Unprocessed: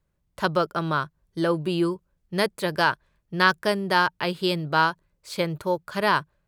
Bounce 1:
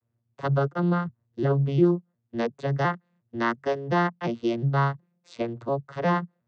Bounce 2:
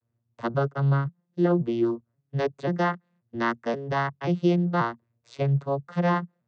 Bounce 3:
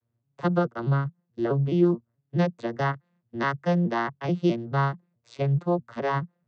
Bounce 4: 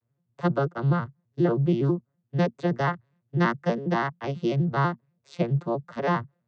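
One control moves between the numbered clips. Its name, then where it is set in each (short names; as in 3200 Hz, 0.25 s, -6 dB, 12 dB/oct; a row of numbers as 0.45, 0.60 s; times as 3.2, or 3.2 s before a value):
arpeggiated vocoder, a note every: 355, 533, 214, 82 ms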